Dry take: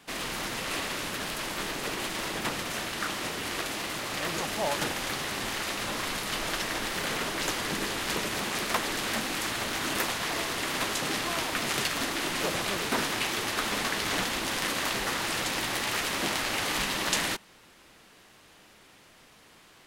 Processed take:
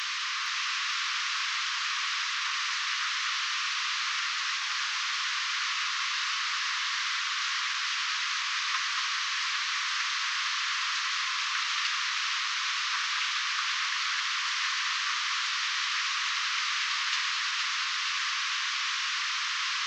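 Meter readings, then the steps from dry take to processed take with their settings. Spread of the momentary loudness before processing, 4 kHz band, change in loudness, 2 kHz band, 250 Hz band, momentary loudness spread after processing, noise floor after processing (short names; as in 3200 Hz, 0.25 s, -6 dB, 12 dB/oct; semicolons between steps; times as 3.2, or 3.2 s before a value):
4 LU, +4.0 dB, +1.5 dB, +3.0 dB, under -40 dB, 1 LU, -32 dBFS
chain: delta modulation 32 kbps, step -22 dBFS; elliptic high-pass 1100 Hz, stop band 40 dB; echo with dull and thin repeats by turns 0.231 s, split 1800 Hz, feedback 74%, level -2.5 dB; gain -2 dB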